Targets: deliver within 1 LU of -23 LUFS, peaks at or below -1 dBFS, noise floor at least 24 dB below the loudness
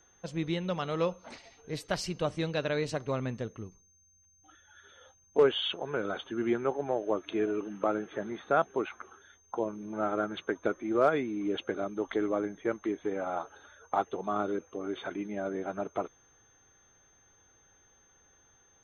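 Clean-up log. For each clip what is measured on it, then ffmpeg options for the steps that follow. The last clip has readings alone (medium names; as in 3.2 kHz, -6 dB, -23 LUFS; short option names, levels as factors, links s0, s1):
steady tone 6.3 kHz; tone level -63 dBFS; loudness -32.5 LUFS; peak level -14.5 dBFS; loudness target -23.0 LUFS
-> -af "bandreject=f=6300:w=30"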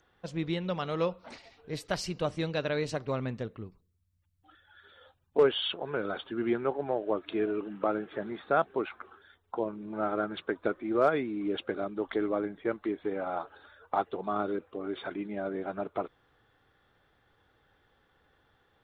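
steady tone not found; loudness -32.5 LUFS; peak level -14.5 dBFS; loudness target -23.0 LUFS
-> -af "volume=2.99"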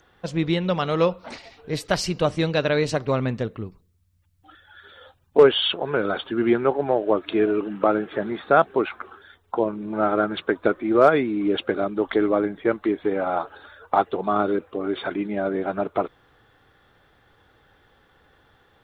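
loudness -23.0 LUFS; peak level -5.0 dBFS; noise floor -62 dBFS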